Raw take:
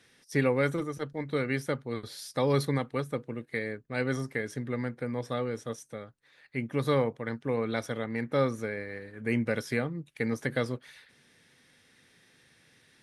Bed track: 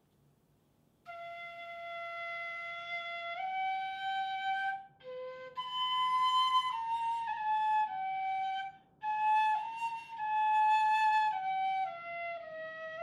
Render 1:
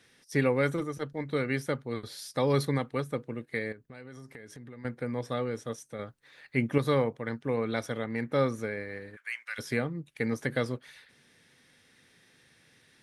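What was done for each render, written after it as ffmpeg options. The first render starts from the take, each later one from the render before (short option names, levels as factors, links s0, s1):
-filter_complex "[0:a]asettb=1/sr,asplit=3[s0][s1][s2];[s0]atrim=end=3.724[s3];[s1]atrim=start=3.72:end=4.85,asetpts=PTS-STARTPTS,afade=t=in:d=0.004:c=qsin,afade=t=out:st=1.126:d=0.004:c=qsin,acompressor=threshold=0.00631:ratio=5:attack=3.2:release=140:knee=1:detection=peak[s4];[s2]atrim=start=4.846[s5];[s3][s4]acrossfade=d=0.004:c1=hsin:c2=qsin[s6];[s6][s5]acrossfade=d=0.004:c1=qsin:c2=hsin,asplit=3[s7][s8][s9];[s7]afade=t=out:st=9.15:d=0.02[s10];[s8]highpass=f=1300:w=0.5412,highpass=f=1300:w=1.3066,afade=t=in:st=9.15:d=0.02,afade=t=out:st=9.58:d=0.02[s11];[s9]afade=t=in:st=9.58:d=0.02[s12];[s10][s11][s12]amix=inputs=3:normalize=0,asplit=3[s13][s14][s15];[s13]atrim=end=5.992[s16];[s14]atrim=start=5.988:end=6.782,asetpts=PTS-STARTPTS,volume=1.88[s17];[s15]atrim=start=6.778[s18];[s16][s17]acrossfade=d=0.004:c1=hsin:c2=hsin[s19];[s19][s18]acrossfade=d=0.004:c1=hsin:c2=hsin"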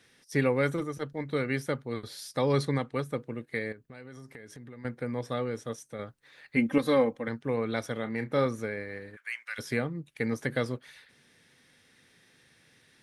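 -filter_complex "[0:a]asettb=1/sr,asplit=3[s0][s1][s2];[s0]atrim=end=2.414[s3];[s1]atrim=start=2.41:end=2.95,asetpts=PTS-STARTPTS,afade=t=in:d=0.004:c=qsin,afade=t=out:st=0.536:d=0.004:c=qsin,lowpass=f=9700:w=0.5412,lowpass=f=9700:w=1.3066[s4];[s2]atrim=start=2.946[s5];[s3][s4]acrossfade=d=0.004:c1=hsin:c2=qsin[s6];[s6][s5]acrossfade=d=0.004:c1=qsin:c2=hsin,asettb=1/sr,asplit=3[s7][s8][s9];[s7]atrim=end=6.564[s10];[s8]atrim=start=6.56:end=7.28,asetpts=PTS-STARTPTS,afade=t=in:d=0.004:c=qsin,afade=t=out:st=0.716:d=0.004:c=qsin,aecho=1:1:3.8:0.73,atrim=end_sample=31752[s11];[s9]atrim=start=7.276[s12];[s10][s11]acrossfade=d=0.004:c1=hsin:c2=qsin[s13];[s13][s12]acrossfade=d=0.004:c1=qsin:c2=hsin,asettb=1/sr,asplit=3[s14][s15][s16];[s14]atrim=end=7.944[s17];[s15]atrim=start=7.94:end=8.46,asetpts=PTS-STARTPTS,afade=t=in:d=0.004:c=qsin,afade=t=out:st=0.516:d=0.004:c=qsin,asplit=2[s18][s19];[s19]adelay=32,volume=0.299[s20];[s18][s20]amix=inputs=2:normalize=0,atrim=end_sample=22932[s21];[s16]atrim=start=8.456[s22];[s17][s21]acrossfade=d=0.004:c1=hsin:c2=qsin[s23];[s23][s22]acrossfade=d=0.004:c1=qsin:c2=hsin"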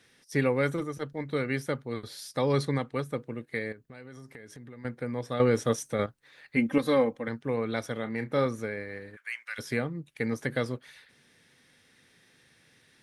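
-filter_complex "[0:a]asplit=3[s0][s1][s2];[s0]atrim=end=5.402[s3];[s1]atrim=start=5.398:end=6.062,asetpts=PTS-STARTPTS,volume=3.16[s4];[s2]atrim=start=6.058[s5];[s3][s4]acrossfade=d=0.004:c1=hsin:c2=hsin[s6];[s6][s5]acrossfade=d=0.004:c1=hsin:c2=hsin"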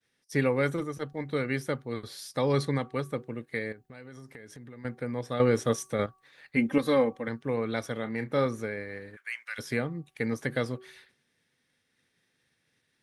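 -af "agate=range=0.0224:threshold=0.00224:ratio=3:detection=peak,bandreject=f=378.9:t=h:w=4,bandreject=f=757.8:t=h:w=4,bandreject=f=1136.7:t=h:w=4"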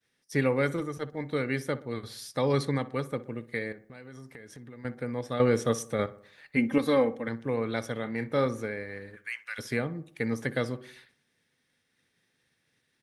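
-filter_complex "[0:a]asplit=2[s0][s1];[s1]adelay=61,lowpass=f=1800:p=1,volume=0.158,asplit=2[s2][s3];[s3]adelay=61,lowpass=f=1800:p=1,volume=0.52,asplit=2[s4][s5];[s5]adelay=61,lowpass=f=1800:p=1,volume=0.52,asplit=2[s6][s7];[s7]adelay=61,lowpass=f=1800:p=1,volume=0.52,asplit=2[s8][s9];[s9]adelay=61,lowpass=f=1800:p=1,volume=0.52[s10];[s0][s2][s4][s6][s8][s10]amix=inputs=6:normalize=0"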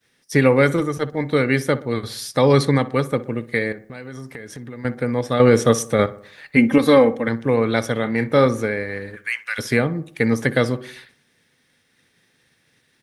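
-af "volume=3.76,alimiter=limit=0.708:level=0:latency=1"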